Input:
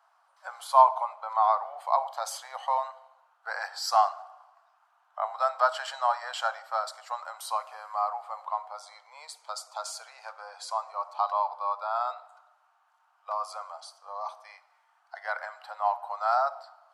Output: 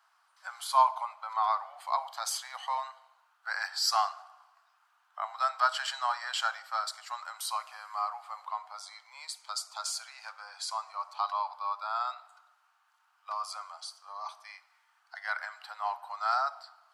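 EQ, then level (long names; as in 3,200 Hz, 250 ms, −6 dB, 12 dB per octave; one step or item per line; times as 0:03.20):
high-pass filter 1,500 Hz 12 dB per octave
parametric band 4,700 Hz +2 dB 0.22 octaves
+3.5 dB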